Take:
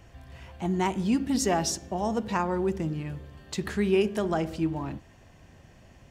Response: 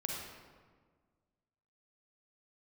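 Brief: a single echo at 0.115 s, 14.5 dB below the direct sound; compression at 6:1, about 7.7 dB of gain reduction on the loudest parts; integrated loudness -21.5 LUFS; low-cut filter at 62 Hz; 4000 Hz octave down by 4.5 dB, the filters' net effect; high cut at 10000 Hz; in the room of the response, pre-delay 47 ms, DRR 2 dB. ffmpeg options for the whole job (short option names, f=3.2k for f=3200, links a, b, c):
-filter_complex "[0:a]highpass=62,lowpass=10k,equalizer=f=4k:t=o:g=-7,acompressor=threshold=-27dB:ratio=6,aecho=1:1:115:0.188,asplit=2[a][b];[1:a]atrim=start_sample=2205,adelay=47[c];[b][c]afir=irnorm=-1:irlink=0,volume=-4dB[d];[a][d]amix=inputs=2:normalize=0,volume=8.5dB"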